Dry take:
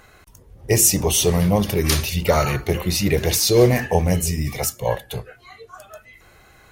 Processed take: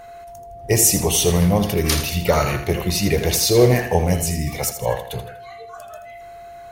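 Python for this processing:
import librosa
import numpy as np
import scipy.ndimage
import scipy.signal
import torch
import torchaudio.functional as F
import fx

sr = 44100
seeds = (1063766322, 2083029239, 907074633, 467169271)

y = x + 10.0 ** (-38.0 / 20.0) * np.sin(2.0 * np.pi * 690.0 * np.arange(len(x)) / sr)
y = fx.echo_feedback(y, sr, ms=81, feedback_pct=39, wet_db=-10.0)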